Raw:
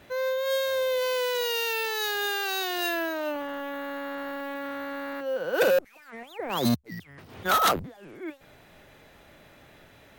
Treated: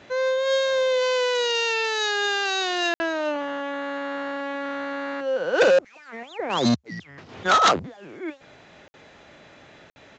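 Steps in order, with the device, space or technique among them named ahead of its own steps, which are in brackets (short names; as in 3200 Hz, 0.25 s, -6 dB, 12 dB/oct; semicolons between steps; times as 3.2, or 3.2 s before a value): call with lost packets (HPF 140 Hz 6 dB/oct; downsampling 16000 Hz; packet loss packets of 60 ms); gain +5 dB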